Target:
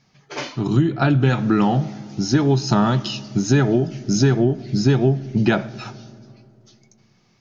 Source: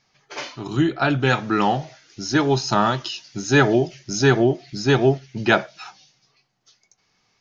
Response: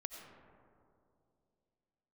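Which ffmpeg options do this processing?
-filter_complex "[0:a]equalizer=frequency=170:width=0.67:gain=12,acompressor=threshold=-15dB:ratio=6,asplit=2[link_01][link_02];[1:a]atrim=start_sample=2205,lowshelf=frequency=130:gain=10.5[link_03];[link_02][link_03]afir=irnorm=-1:irlink=0,volume=-11.5dB[link_04];[link_01][link_04]amix=inputs=2:normalize=0"

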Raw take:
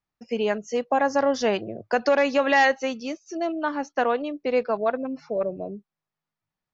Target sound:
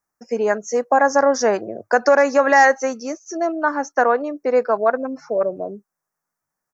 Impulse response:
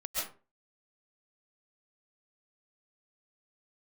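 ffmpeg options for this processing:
-af "firequalizer=gain_entry='entry(120,0);entry(240,6);entry(490,10);entry(1600,13);entry(3100,-10);entry(5800,15)':delay=0.05:min_phase=1,volume=-4dB"

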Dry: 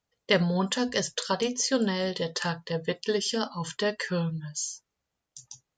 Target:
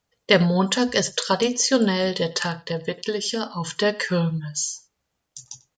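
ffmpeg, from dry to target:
ffmpeg -i in.wav -filter_complex "[0:a]asettb=1/sr,asplit=3[link_01][link_02][link_03];[link_01]atrim=end=2.424[link_04];[link_02]atrim=start=2.42:end=3.76,asetpts=PTS-STARTPTS,afade=type=in:duration=0.004:curve=qsin,afade=type=out:start_time=1.336:duration=0.004:curve=qsin,acompressor=threshold=-29dB:ratio=4[link_05];[link_03]atrim=start=3.756[link_06];[link_04][link_05]acrossfade=duration=0.004:curve1=hsin:curve2=qsin[link_07];[link_07][link_06]acrossfade=duration=0.004:curve1=qsin:curve2=hsin,aecho=1:1:94:0.0841,volume=6.5dB" out.wav

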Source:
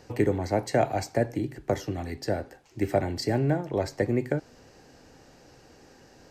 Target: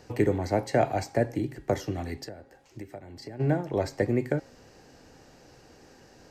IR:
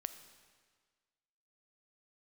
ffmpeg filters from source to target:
-filter_complex "[0:a]acrossover=split=4000[link_01][link_02];[link_02]alimiter=level_in=8dB:limit=-24dB:level=0:latency=1:release=371,volume=-8dB[link_03];[link_01][link_03]amix=inputs=2:normalize=0,bandreject=frequency=271.5:width_type=h:width=4,bandreject=frequency=543:width_type=h:width=4,bandreject=frequency=814.5:width_type=h:width=4,bandreject=frequency=1086:width_type=h:width=4,bandreject=frequency=1357.5:width_type=h:width=4,bandreject=frequency=1629:width_type=h:width=4,bandreject=frequency=1900.5:width_type=h:width=4,bandreject=frequency=2172:width_type=h:width=4,bandreject=frequency=2443.5:width_type=h:width=4,bandreject=frequency=2715:width_type=h:width=4,bandreject=frequency=2986.5:width_type=h:width=4,bandreject=frequency=3258:width_type=h:width=4,bandreject=frequency=3529.5:width_type=h:width=4,bandreject=frequency=3801:width_type=h:width=4,bandreject=frequency=4072.5:width_type=h:width=4,bandreject=frequency=4344:width_type=h:width=4,bandreject=frequency=4615.5:width_type=h:width=4,bandreject=frequency=4887:width_type=h:width=4,bandreject=frequency=5158.5:width_type=h:width=4,bandreject=frequency=5430:width_type=h:width=4,bandreject=frequency=5701.5:width_type=h:width=4,bandreject=frequency=5973:width_type=h:width=4,bandreject=frequency=6244.5:width_type=h:width=4,bandreject=frequency=6516:width_type=h:width=4,bandreject=frequency=6787.5:width_type=h:width=4,bandreject=frequency=7059:width_type=h:width=4,bandreject=frequency=7330.5:width_type=h:width=4,bandreject=frequency=7602:width_type=h:width=4,bandreject=frequency=7873.5:width_type=h:width=4,bandreject=frequency=8145:width_type=h:width=4,bandreject=frequency=8416.5:width_type=h:width=4,bandreject=frequency=8688:width_type=h:width=4,bandreject=frequency=8959.5:width_type=h:width=4,bandreject=frequency=9231:width_type=h:width=4,bandreject=frequency=9502.5:width_type=h:width=4,asplit=3[link_04][link_05][link_06];[link_04]afade=type=out:start_time=2.24:duration=0.02[link_07];[link_05]acompressor=threshold=-39dB:ratio=8,afade=type=in:start_time=2.24:duration=0.02,afade=type=out:start_time=3.39:duration=0.02[link_08];[link_06]afade=type=in:start_time=3.39:duration=0.02[link_09];[link_07][link_08][link_09]amix=inputs=3:normalize=0"

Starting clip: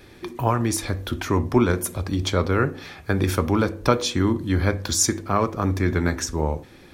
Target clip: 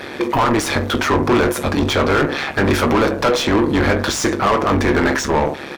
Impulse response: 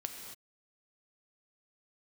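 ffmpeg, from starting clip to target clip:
-filter_complex "[0:a]atempo=1.2,tremolo=f=140:d=0.857,asplit=2[link_01][link_02];[link_02]highpass=frequency=720:poles=1,volume=34dB,asoftclip=type=tanh:threshold=-6dB[link_03];[link_01][link_03]amix=inputs=2:normalize=0,lowpass=frequency=1900:poles=1,volume=-6dB,asplit=2[link_04][link_05];[link_05]adelay=20,volume=-11.5dB[link_06];[link_04][link_06]amix=inputs=2:normalize=0"

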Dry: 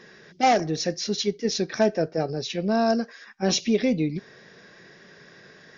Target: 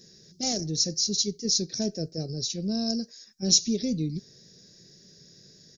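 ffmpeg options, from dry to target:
ffmpeg -i in.wav -af "firequalizer=gain_entry='entry(110,0);entry(240,-6);entry(560,-14);entry(930,-28);entry(3000,-15);entry(4300,2);entry(6800,8)':delay=0.05:min_phase=1,volume=1.5dB" out.wav

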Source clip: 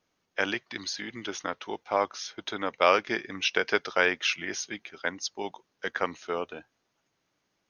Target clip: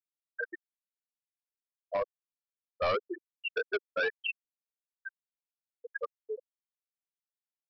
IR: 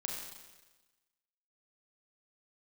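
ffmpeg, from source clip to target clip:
-af "afftfilt=real='re*gte(hypot(re,im),0.282)':imag='im*gte(hypot(re,im),0.282)':win_size=1024:overlap=0.75,highpass=frequency=290:width=0.5412,highpass=frequency=290:width=1.3066,aresample=11025,asoftclip=type=hard:threshold=-25.5dB,aresample=44100"

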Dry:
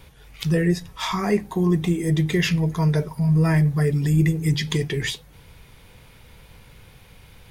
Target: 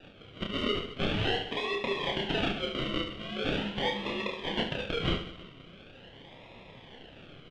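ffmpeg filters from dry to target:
ffmpeg -i in.wav -filter_complex "[0:a]highpass=frequency=44:width=0.5412,highpass=frequency=44:width=1.3066,equalizer=frequency=62:width=0.43:gain=-14,bandreject=frequency=2100:width=5,aecho=1:1:2.6:0.96,afreqshift=55,acrossover=split=740[link_01][link_02];[link_01]acompressor=threshold=-39dB:ratio=4[link_03];[link_03][link_02]amix=inputs=2:normalize=0,acrusher=samples=41:mix=1:aa=0.000001:lfo=1:lforange=24.6:lforate=0.42,lowpass=frequency=3100:width_type=q:width=5.7,alimiter=limit=-16.5dB:level=0:latency=1:release=184,flanger=delay=2.6:depth=5:regen=59:speed=1.7:shape=triangular,aecho=1:1:30|72|130.8|213.1|328.4:0.631|0.398|0.251|0.158|0.1,volume=2dB" out.wav

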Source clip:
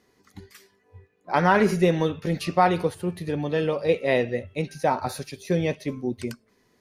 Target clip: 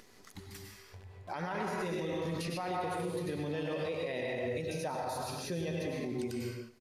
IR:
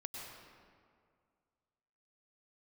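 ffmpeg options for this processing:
-filter_complex "[0:a]crystalizer=i=2.5:c=0,acrusher=bits=9:dc=4:mix=0:aa=0.000001,aresample=32000,aresample=44100[link_01];[1:a]atrim=start_sample=2205,afade=type=out:start_time=0.42:duration=0.01,atrim=end_sample=18963[link_02];[link_01][link_02]afir=irnorm=-1:irlink=0,alimiter=level_in=2.5dB:limit=-24dB:level=0:latency=1:release=103,volume=-2.5dB,highshelf=frequency=9600:gain=-11,aecho=1:1:107|214|321|428:0.112|0.0527|0.0248|0.0116,acompressor=mode=upward:threshold=-45dB:ratio=2.5,asettb=1/sr,asplit=3[link_03][link_04][link_05];[link_03]atrim=end=4.614[link_06];[link_04]atrim=start=4.61:end=5.93,asetpts=PTS-STARTPTS,afade=type=in:duration=0.004:curve=qsin,afade=type=out:start_time=1.316:duration=0.004:curve=qsin,bandreject=frequency=2200:width=7.7[link_07];[link_05]atrim=start=5.926[link_08];[link_06][link_07]acrossfade=duration=0.004:curve1=hsin:curve2=qsin[link_09];[link_09][link_08]acrossfade=duration=0.004:curve1=qsin:curve2=hsin,volume=-1dB"

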